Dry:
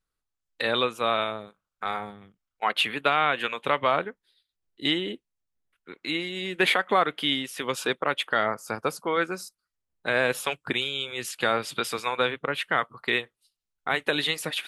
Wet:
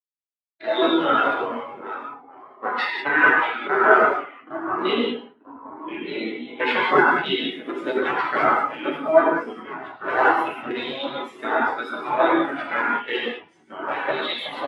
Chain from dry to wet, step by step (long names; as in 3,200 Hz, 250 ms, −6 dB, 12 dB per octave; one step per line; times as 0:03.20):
sub-harmonics by changed cycles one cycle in 3, inverted
high-pass filter 52 Hz 6 dB per octave
low-shelf EQ 90 Hz −11.5 dB
delay with pitch and tempo change per echo 112 ms, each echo −3 semitones, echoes 3, each echo −6 dB
on a send: repeating echo 100 ms, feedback 50%, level −14 dB
on the sum: reverb whose tail is shaped and stops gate 230 ms flat, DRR −3.5 dB
in parallel at −2 dB: brickwall limiter −12 dBFS, peak gain reduction 9 dB
on the sum: mains-hum notches 60/120/180 Hz
every bin expanded away from the loudest bin 2.5 to 1
level −1 dB